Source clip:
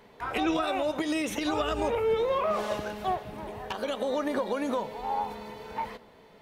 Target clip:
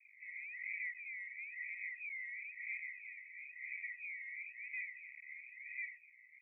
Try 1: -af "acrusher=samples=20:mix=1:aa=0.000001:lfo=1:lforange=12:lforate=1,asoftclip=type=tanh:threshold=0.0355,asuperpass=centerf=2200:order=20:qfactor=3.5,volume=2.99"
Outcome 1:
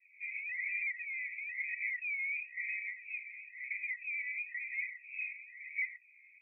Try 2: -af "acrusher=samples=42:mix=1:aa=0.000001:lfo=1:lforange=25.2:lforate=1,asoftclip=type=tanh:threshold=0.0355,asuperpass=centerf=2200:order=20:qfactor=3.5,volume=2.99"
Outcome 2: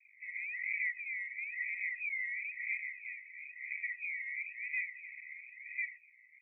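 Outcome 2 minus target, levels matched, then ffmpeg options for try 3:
saturation: distortion -6 dB
-af "acrusher=samples=42:mix=1:aa=0.000001:lfo=1:lforange=25.2:lforate=1,asoftclip=type=tanh:threshold=0.0126,asuperpass=centerf=2200:order=20:qfactor=3.5,volume=2.99"

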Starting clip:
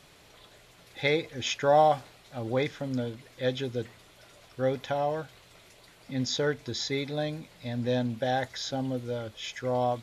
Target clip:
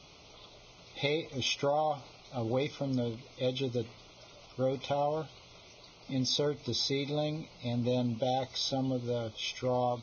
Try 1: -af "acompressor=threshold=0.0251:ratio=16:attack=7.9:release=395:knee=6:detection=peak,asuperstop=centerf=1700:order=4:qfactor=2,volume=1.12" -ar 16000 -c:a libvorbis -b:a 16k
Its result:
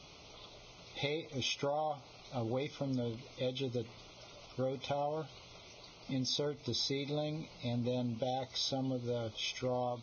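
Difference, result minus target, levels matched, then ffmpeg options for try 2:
compression: peak gain reduction +6 dB
-af "acompressor=threshold=0.0531:ratio=16:attack=7.9:release=395:knee=6:detection=peak,asuperstop=centerf=1700:order=4:qfactor=2,volume=1.12" -ar 16000 -c:a libvorbis -b:a 16k

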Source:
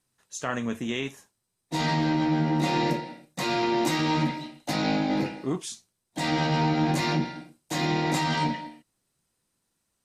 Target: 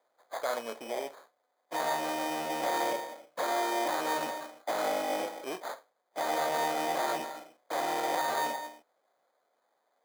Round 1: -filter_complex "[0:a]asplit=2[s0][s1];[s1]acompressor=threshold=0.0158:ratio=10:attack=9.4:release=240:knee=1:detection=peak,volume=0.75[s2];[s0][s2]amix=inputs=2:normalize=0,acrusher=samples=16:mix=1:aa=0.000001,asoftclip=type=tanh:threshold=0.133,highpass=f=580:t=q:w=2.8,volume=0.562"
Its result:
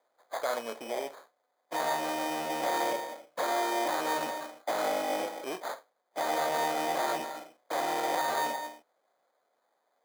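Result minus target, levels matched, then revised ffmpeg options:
compression: peak gain reduction -9.5 dB
-filter_complex "[0:a]asplit=2[s0][s1];[s1]acompressor=threshold=0.00473:ratio=10:attack=9.4:release=240:knee=1:detection=peak,volume=0.75[s2];[s0][s2]amix=inputs=2:normalize=0,acrusher=samples=16:mix=1:aa=0.000001,asoftclip=type=tanh:threshold=0.133,highpass=f=580:t=q:w=2.8,volume=0.562"

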